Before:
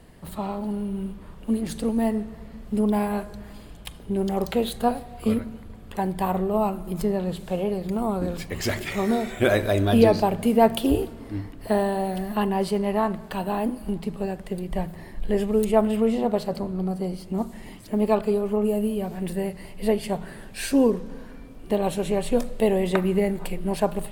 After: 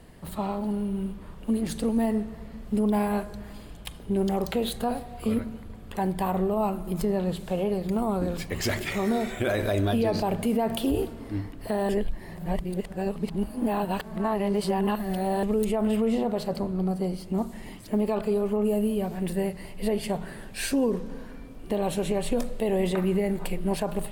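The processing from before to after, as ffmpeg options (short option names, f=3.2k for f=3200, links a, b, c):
-filter_complex "[0:a]asplit=3[a][b][c];[a]atrim=end=11.892[d];[b]atrim=start=11.888:end=15.432,asetpts=PTS-STARTPTS,areverse[e];[c]atrim=start=15.428[f];[d][e]acrossfade=d=0.004:c1=hsin:c2=hsin[g];[g][f]acrossfade=d=0.004:c1=hsin:c2=hsin,alimiter=limit=-17dB:level=0:latency=1:release=38"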